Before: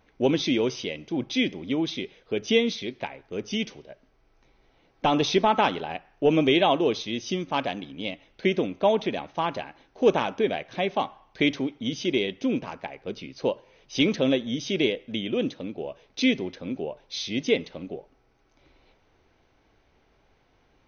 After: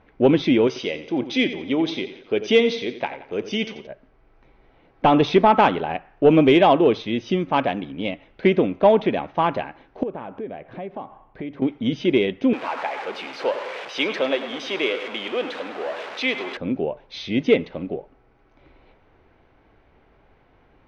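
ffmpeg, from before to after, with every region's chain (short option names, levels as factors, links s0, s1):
-filter_complex "[0:a]asettb=1/sr,asplit=3[s0][s1][s2];[s0]atrim=end=0.674[s3];[s1]atrim=start=0.67:end=3.87,asetpts=PTS-STARTPTS,afade=t=in:d=0.004:c=qsin,afade=t=out:st=3.196:d=0.004:c=qsin,bass=f=250:g=-8,treble=f=4000:g=9,aecho=1:1:88|176|264|352:0.224|0.101|0.0453|0.0204,atrim=end_sample=141120[s4];[s2]atrim=start=3.866[s5];[s3][s4]acrossfade=d=0.004:c1=hsin:c2=qsin[s6];[s6][s5]acrossfade=d=0.004:c1=qsin:c2=hsin,asettb=1/sr,asplit=3[s7][s8][s9];[s7]atrim=end=10.034[s10];[s8]atrim=start=10.03:end=11.62,asetpts=PTS-STARTPTS,afade=t=in:d=0.004:c=qsin,afade=t=out:st=1.586:d=0.004:c=qsin,lowpass=f=1000:p=1,acompressor=threshold=0.00794:ratio=2.5:attack=3.2:release=140:knee=1:detection=peak[s11];[s9]atrim=start=11.616[s12];[s10][s11]acrossfade=d=0.004:c1=hsin:c2=qsin[s13];[s13][s12]acrossfade=d=0.004:c1=qsin:c2=hsin,asettb=1/sr,asplit=3[s14][s15][s16];[s14]atrim=end=12.534[s17];[s15]atrim=start=12.53:end=16.57,asetpts=PTS-STARTPTS,afade=t=in:d=0.004:c=qsin,afade=t=out:st=4.036:d=0.004:c=qsin,aeval=exprs='val(0)+0.5*0.0299*sgn(val(0))':c=same,highpass=650,aecho=1:1:102|204|306|408|510|612|714:0.251|0.148|0.0874|0.0516|0.0304|0.018|0.0106,atrim=end_sample=178164[s18];[s16]atrim=start=16.566[s19];[s17][s18]acrossfade=d=0.004:c1=hsin:c2=qsin[s20];[s20][s19]acrossfade=d=0.004:c1=qsin:c2=hsin,lowpass=2300,acontrast=85"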